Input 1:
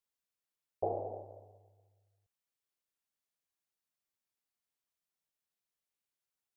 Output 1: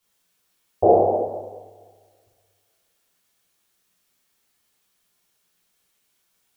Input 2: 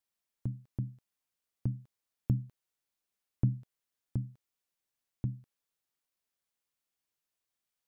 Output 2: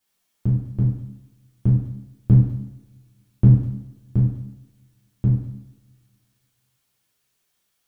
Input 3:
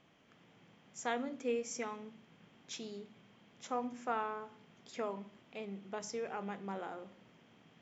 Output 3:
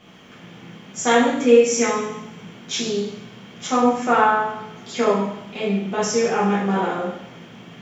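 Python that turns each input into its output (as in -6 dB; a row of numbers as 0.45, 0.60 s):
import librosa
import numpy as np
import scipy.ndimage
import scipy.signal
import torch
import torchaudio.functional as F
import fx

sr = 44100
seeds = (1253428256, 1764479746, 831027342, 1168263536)

y = fx.rev_double_slope(x, sr, seeds[0], early_s=0.74, late_s=2.4, knee_db=-27, drr_db=-7.5)
y = librosa.util.normalize(y) * 10.0 ** (-3 / 20.0)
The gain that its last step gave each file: +13.0, +7.0, +12.5 dB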